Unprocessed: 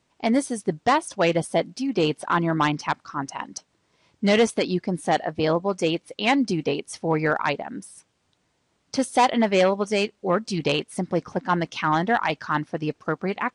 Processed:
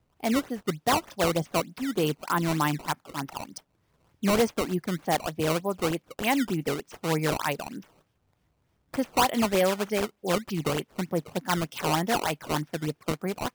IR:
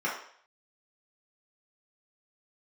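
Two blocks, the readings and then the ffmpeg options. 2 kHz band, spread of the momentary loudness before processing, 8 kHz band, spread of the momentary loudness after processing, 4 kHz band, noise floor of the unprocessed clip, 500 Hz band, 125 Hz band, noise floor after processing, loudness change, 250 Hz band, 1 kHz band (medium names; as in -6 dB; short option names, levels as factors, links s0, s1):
-5.0 dB, 9 LU, +1.0 dB, 8 LU, -3.0 dB, -71 dBFS, -5.0 dB, -2.0 dB, -72 dBFS, -4.0 dB, -4.0 dB, -5.0 dB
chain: -filter_complex "[0:a]lowpass=f=6400:w=0.5412,lowpass=f=6400:w=1.3066,equalizer=f=150:w=3.9:g=3.5,bandreject=f=4100:w=12,acrossover=split=100|1400|3200[s0][s1][s2][s3];[s0]acompressor=mode=upward:threshold=0.00158:ratio=2.5[s4];[s4][s1][s2][s3]amix=inputs=4:normalize=0,acrusher=samples=15:mix=1:aa=0.000001:lfo=1:lforange=24:lforate=3.3,volume=0.596"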